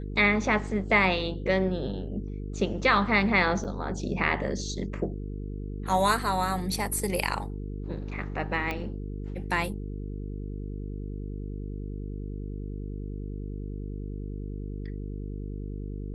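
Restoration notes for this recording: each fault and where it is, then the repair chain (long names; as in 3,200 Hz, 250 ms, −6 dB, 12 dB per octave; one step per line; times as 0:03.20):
mains buzz 50 Hz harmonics 9 −35 dBFS
0:03.64–0:03.65: drop-out 6.4 ms
0:08.71: click −18 dBFS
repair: click removal
hum removal 50 Hz, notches 9
repair the gap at 0:03.64, 6.4 ms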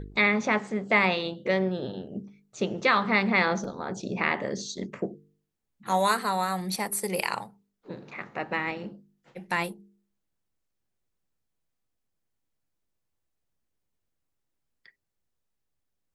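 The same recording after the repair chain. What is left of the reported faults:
none of them is left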